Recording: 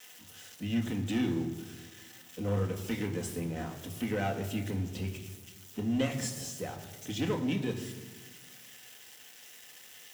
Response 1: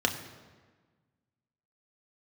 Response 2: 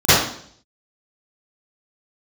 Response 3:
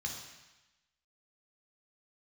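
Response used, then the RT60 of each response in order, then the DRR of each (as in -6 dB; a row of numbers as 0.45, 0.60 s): 1; 1.4, 0.60, 1.0 s; 3.0, -23.5, 0.0 dB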